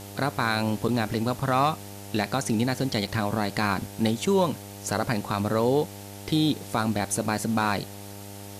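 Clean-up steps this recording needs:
clipped peaks rebuilt −13 dBFS
hum removal 100.2 Hz, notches 9
repair the gap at 0:00.88/0:03.07, 5.2 ms
noise reduction from a noise print 30 dB

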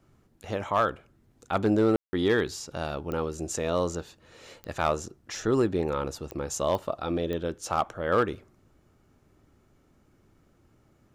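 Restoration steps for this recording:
clipped peaks rebuilt −15 dBFS
click removal
ambience match 0:01.96–0:02.13

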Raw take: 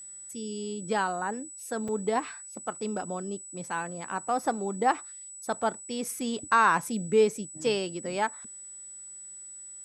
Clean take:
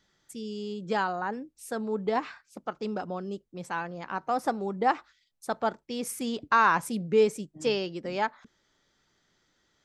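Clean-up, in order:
notch filter 7,900 Hz, Q 30
repair the gap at 0:01.88, 5.3 ms

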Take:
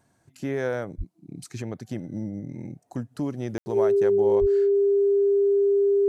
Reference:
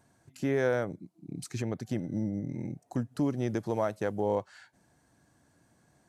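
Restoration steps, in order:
notch filter 400 Hz, Q 30
high-pass at the plosives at 0:00.97/0:04.40
ambience match 0:03.58–0:03.66

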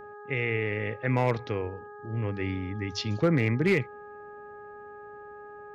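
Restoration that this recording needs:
clipped peaks rebuilt −16 dBFS
hum removal 414.8 Hz, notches 4

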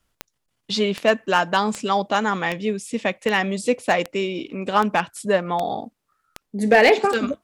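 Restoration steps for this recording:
clipped peaks rebuilt −6.5 dBFS
click removal

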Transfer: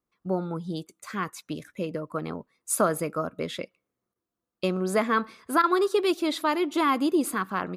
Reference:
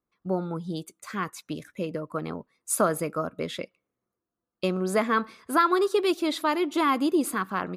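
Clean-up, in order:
repair the gap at 0:00.87/0:04.14/0:05.62, 15 ms

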